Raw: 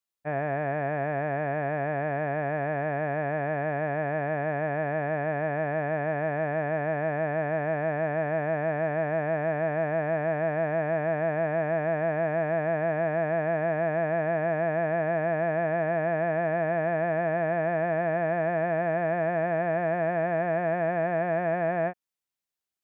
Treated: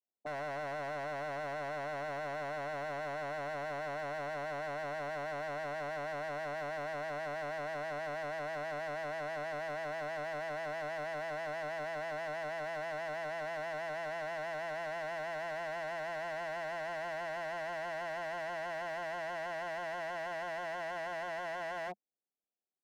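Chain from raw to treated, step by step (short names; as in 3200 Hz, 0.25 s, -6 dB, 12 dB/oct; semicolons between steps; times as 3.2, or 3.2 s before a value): elliptic band-pass 200–770 Hz, stop band 40 dB; limiter -27.5 dBFS, peak gain reduction 8 dB; wavefolder -35 dBFS; Doppler distortion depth 0.2 ms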